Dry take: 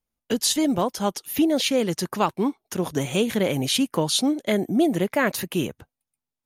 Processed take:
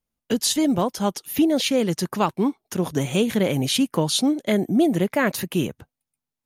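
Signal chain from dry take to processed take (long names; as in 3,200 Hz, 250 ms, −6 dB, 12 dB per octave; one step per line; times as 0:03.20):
parametric band 160 Hz +3.5 dB 1.7 octaves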